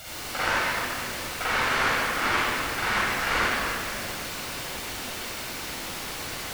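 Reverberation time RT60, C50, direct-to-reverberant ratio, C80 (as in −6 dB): 2.9 s, −6.5 dB, −9.5 dB, −3.0 dB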